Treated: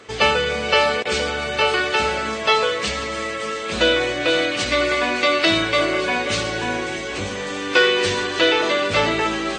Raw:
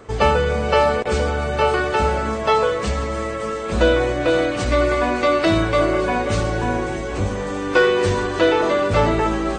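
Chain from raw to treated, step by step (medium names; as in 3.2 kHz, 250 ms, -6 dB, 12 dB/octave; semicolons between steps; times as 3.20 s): frequency weighting D; trim -2.5 dB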